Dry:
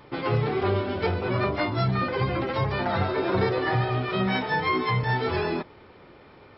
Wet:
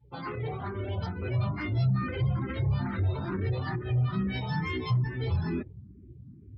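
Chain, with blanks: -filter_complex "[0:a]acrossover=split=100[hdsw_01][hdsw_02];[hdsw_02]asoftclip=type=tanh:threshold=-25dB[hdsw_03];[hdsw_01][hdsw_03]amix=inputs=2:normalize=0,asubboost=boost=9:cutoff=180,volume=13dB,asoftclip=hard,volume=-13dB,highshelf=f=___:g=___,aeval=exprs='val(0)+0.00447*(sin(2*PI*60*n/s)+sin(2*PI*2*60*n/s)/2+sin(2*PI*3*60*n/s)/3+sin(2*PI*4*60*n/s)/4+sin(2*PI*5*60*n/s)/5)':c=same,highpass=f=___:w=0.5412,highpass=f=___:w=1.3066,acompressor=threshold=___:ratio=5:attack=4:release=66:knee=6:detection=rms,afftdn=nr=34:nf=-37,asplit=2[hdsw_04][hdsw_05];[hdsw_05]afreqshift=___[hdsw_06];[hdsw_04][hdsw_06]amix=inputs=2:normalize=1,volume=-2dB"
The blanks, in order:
3.3k, 6.5, 58, 58, -19dB, 2.3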